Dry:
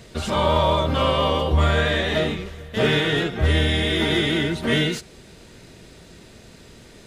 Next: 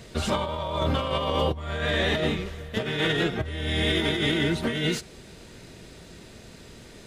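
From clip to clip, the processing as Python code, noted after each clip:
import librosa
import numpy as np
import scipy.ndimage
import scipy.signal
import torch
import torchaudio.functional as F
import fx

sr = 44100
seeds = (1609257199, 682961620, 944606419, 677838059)

y = fx.over_compress(x, sr, threshold_db=-22.0, ratio=-0.5)
y = F.gain(torch.from_numpy(y), -3.0).numpy()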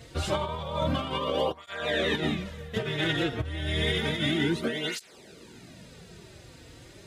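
y = fx.flanger_cancel(x, sr, hz=0.3, depth_ms=5.2)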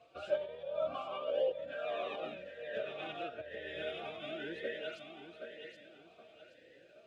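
y = fx.echo_feedback(x, sr, ms=773, feedback_pct=37, wet_db=-7)
y = fx.vowel_sweep(y, sr, vowels='a-e', hz=0.97)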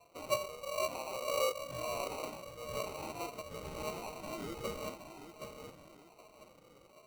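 y = fx.sample_hold(x, sr, seeds[0], rate_hz=1700.0, jitter_pct=0)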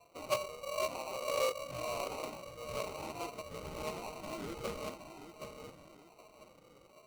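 y = fx.doppler_dist(x, sr, depth_ms=0.19)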